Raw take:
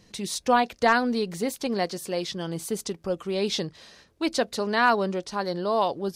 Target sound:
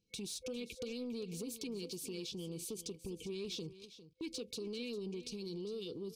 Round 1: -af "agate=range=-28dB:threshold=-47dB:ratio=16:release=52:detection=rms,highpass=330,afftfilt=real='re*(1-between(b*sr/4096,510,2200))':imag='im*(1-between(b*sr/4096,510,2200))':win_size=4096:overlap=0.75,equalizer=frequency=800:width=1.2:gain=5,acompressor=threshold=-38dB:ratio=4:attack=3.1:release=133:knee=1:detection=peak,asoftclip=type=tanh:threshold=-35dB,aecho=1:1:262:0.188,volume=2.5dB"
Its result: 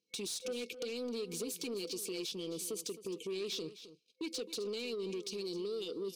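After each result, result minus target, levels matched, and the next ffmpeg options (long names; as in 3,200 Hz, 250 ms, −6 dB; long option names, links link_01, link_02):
echo 140 ms early; downward compressor: peak gain reduction −6 dB; 250 Hz band −3.0 dB
-af "agate=range=-28dB:threshold=-47dB:ratio=16:release=52:detection=rms,highpass=330,afftfilt=real='re*(1-between(b*sr/4096,510,2200))':imag='im*(1-between(b*sr/4096,510,2200))':win_size=4096:overlap=0.75,equalizer=frequency=800:width=1.2:gain=5,acompressor=threshold=-38dB:ratio=4:attack=3.1:release=133:knee=1:detection=peak,asoftclip=type=tanh:threshold=-35dB,aecho=1:1:402:0.188,volume=2.5dB"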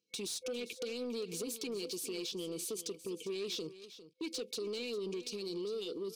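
downward compressor: peak gain reduction −6 dB; 250 Hz band −3.0 dB
-af "agate=range=-28dB:threshold=-47dB:ratio=16:release=52:detection=rms,highpass=330,afftfilt=real='re*(1-between(b*sr/4096,510,2200))':imag='im*(1-between(b*sr/4096,510,2200))':win_size=4096:overlap=0.75,equalizer=frequency=800:width=1.2:gain=5,acompressor=threshold=-44.5dB:ratio=4:attack=3.1:release=133:knee=1:detection=peak,asoftclip=type=tanh:threshold=-35dB,aecho=1:1:402:0.188,volume=2.5dB"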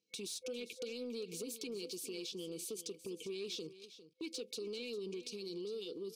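250 Hz band −3.0 dB
-af "agate=range=-28dB:threshold=-47dB:ratio=16:release=52:detection=rms,afftfilt=real='re*(1-between(b*sr/4096,510,2200))':imag='im*(1-between(b*sr/4096,510,2200))':win_size=4096:overlap=0.75,equalizer=frequency=800:width=1.2:gain=5,acompressor=threshold=-44.5dB:ratio=4:attack=3.1:release=133:knee=1:detection=peak,asoftclip=type=tanh:threshold=-35dB,aecho=1:1:402:0.188,volume=2.5dB"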